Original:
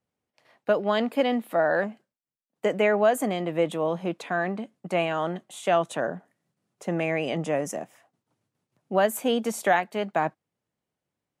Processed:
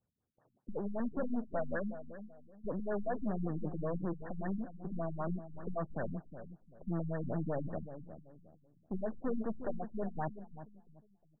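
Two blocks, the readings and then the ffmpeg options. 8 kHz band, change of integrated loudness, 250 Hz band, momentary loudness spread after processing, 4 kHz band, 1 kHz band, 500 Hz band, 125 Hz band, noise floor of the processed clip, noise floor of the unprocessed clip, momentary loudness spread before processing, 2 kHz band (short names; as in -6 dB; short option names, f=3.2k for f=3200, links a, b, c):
under -40 dB, -13.0 dB, -8.0 dB, 15 LU, under -40 dB, -16.5 dB, -15.0 dB, -3.5 dB, -76 dBFS, under -85 dBFS, 9 LU, -20.0 dB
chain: -filter_complex "[0:a]equalizer=f=560:w=0.3:g=-11,acrossover=split=3300[a][b];[a]asoftclip=type=tanh:threshold=-37.5dB[c];[c][b]amix=inputs=2:normalize=0,aeval=exprs='0.0237*(cos(1*acos(clip(val(0)/0.0237,-1,1)))-cos(1*PI/2))+0.00422*(cos(4*acos(clip(val(0)/0.0237,-1,1)))-cos(4*PI/2))':c=same,asplit=2[d][e];[e]adelay=357,lowpass=f=830:p=1,volume=-10dB,asplit=2[f][g];[g]adelay=357,lowpass=f=830:p=1,volume=0.34,asplit=2[h][i];[i]adelay=357,lowpass=f=830:p=1,volume=0.34,asplit=2[j][k];[k]adelay=357,lowpass=f=830:p=1,volume=0.34[l];[d][f][h][j][l]amix=inputs=5:normalize=0,afftfilt=real='re*lt(b*sr/1024,240*pow(1900/240,0.5+0.5*sin(2*PI*5.2*pts/sr)))':imag='im*lt(b*sr/1024,240*pow(1900/240,0.5+0.5*sin(2*PI*5.2*pts/sr)))':win_size=1024:overlap=0.75,volume=5.5dB"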